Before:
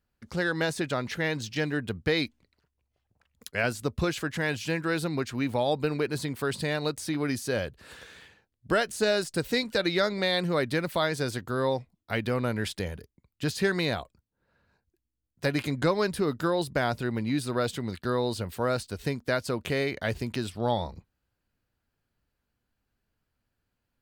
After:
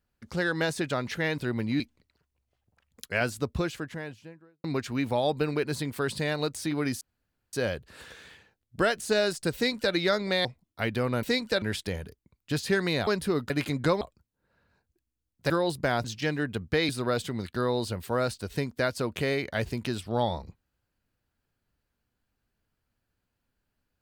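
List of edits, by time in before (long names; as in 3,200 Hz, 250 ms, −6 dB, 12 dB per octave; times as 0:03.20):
0:01.38–0:02.23: swap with 0:16.96–0:17.38
0:03.70–0:05.07: fade out and dull
0:07.44: splice in room tone 0.52 s
0:09.46–0:09.85: duplicate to 0:12.54
0:10.36–0:11.76: remove
0:13.99–0:15.48: swap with 0:15.99–0:16.42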